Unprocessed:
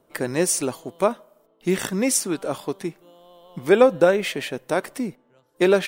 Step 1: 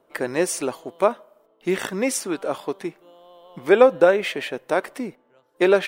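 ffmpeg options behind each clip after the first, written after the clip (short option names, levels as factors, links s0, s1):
-af "bass=f=250:g=-10,treble=f=4000:g=-8,volume=1.26"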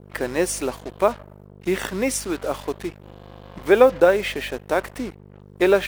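-af "aeval=exprs='val(0)+0.01*(sin(2*PI*50*n/s)+sin(2*PI*2*50*n/s)/2+sin(2*PI*3*50*n/s)/3+sin(2*PI*4*50*n/s)/4+sin(2*PI*5*50*n/s)/5)':c=same,acrusher=bits=5:mix=0:aa=0.5"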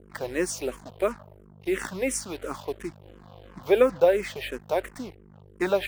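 -filter_complex "[0:a]asplit=2[s0][s1];[s1]afreqshift=-2.9[s2];[s0][s2]amix=inputs=2:normalize=1,volume=0.708"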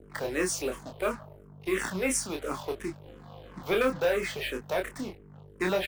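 -filter_complex "[0:a]acrossover=split=220|1100[s0][s1][s2];[s1]asoftclip=type=tanh:threshold=0.0447[s3];[s0][s3][s2]amix=inputs=3:normalize=0,asplit=2[s4][s5];[s5]adelay=27,volume=0.596[s6];[s4][s6]amix=inputs=2:normalize=0"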